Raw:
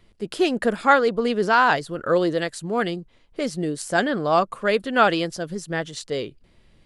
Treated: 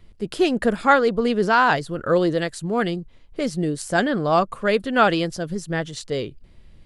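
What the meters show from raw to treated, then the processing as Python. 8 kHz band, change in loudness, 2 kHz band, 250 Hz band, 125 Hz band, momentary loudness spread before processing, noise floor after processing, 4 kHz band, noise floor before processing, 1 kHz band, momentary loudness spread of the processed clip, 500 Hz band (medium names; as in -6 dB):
0.0 dB, +1.0 dB, 0.0 dB, +2.5 dB, +4.5 dB, 12 LU, -49 dBFS, 0.0 dB, -58 dBFS, 0.0 dB, 11 LU, +1.0 dB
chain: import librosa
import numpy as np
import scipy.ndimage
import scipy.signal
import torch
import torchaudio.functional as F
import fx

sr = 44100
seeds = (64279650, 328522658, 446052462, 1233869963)

y = fx.low_shelf(x, sr, hz=140.0, db=10.5)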